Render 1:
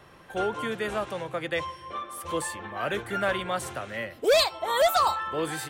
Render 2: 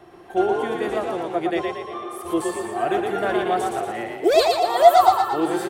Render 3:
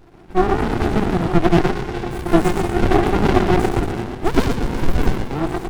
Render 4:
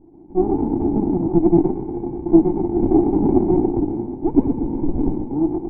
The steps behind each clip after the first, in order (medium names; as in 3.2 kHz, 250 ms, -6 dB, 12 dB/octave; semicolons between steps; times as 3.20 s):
small resonant body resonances 350/700 Hz, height 18 dB, ringing for 60 ms; on a send: frequency-shifting echo 116 ms, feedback 51%, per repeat +30 Hz, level -3.5 dB; on the sum: trim -2 dB
level rider gain up to 10 dB; sliding maximum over 65 samples; trim +4 dB
cascade formant filter u; trim +8 dB